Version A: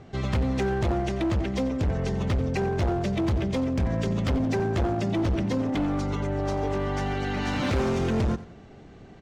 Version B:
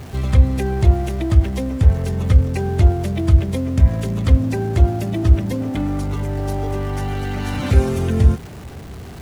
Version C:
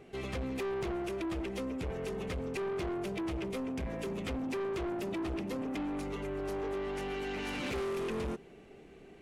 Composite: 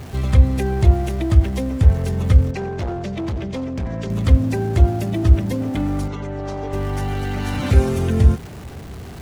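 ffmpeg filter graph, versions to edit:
-filter_complex "[0:a]asplit=2[a][b];[1:a]asplit=3[c][d][e];[c]atrim=end=2.512[f];[a]atrim=start=2.508:end=4.102[g];[d]atrim=start=4.098:end=6.082[h];[b]atrim=start=6.078:end=6.732[i];[e]atrim=start=6.728[j];[f][g]acrossfade=d=0.004:c1=hsin:c2=hsin[k];[k][h]acrossfade=d=0.004:c1=hsin:c2=hsin[l];[l][i]acrossfade=d=0.004:c1=hsin:c2=hsin[m];[m][j]acrossfade=d=0.004:c1=hsin:c2=hsin"

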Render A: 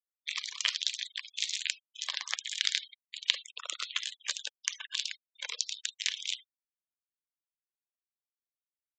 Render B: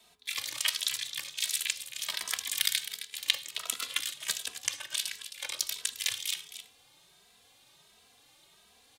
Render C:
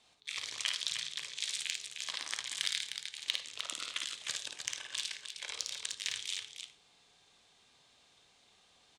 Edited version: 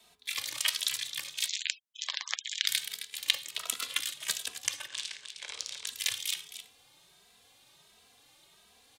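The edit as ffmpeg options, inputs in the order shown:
-filter_complex "[1:a]asplit=3[a][b][c];[a]atrim=end=1.49[d];[0:a]atrim=start=1.45:end=2.7[e];[b]atrim=start=2.66:end=4.882[f];[2:a]atrim=start=4.878:end=5.872[g];[c]atrim=start=5.868[h];[d][e]acrossfade=d=0.04:c1=tri:c2=tri[i];[i][f]acrossfade=d=0.04:c1=tri:c2=tri[j];[j][g]acrossfade=d=0.004:c1=hsin:c2=hsin[k];[k][h]acrossfade=d=0.004:c1=hsin:c2=hsin"

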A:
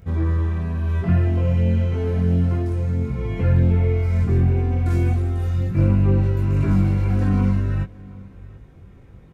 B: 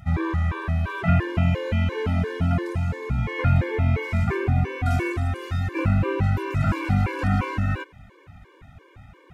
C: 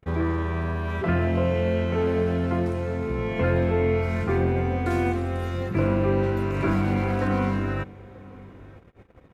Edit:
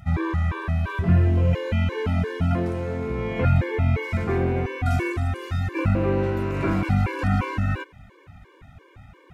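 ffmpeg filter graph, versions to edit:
-filter_complex "[2:a]asplit=3[a][b][c];[1:a]asplit=5[d][e][f][g][h];[d]atrim=end=0.992[i];[0:a]atrim=start=0.988:end=1.532[j];[e]atrim=start=1.528:end=2.552[k];[a]atrim=start=2.548:end=3.452[l];[f]atrim=start=3.448:end=4.172[m];[b]atrim=start=4.168:end=4.662[n];[g]atrim=start=4.658:end=5.952[o];[c]atrim=start=5.948:end=6.832[p];[h]atrim=start=6.828[q];[i][j]acrossfade=d=0.004:c1=hsin:c2=hsin[r];[r][k]acrossfade=d=0.004:c1=hsin:c2=hsin[s];[s][l]acrossfade=d=0.004:c1=hsin:c2=hsin[t];[t][m]acrossfade=d=0.004:c1=hsin:c2=hsin[u];[u][n]acrossfade=d=0.004:c1=hsin:c2=hsin[v];[v][o]acrossfade=d=0.004:c1=hsin:c2=hsin[w];[w][p]acrossfade=d=0.004:c1=hsin:c2=hsin[x];[x][q]acrossfade=d=0.004:c1=hsin:c2=hsin"

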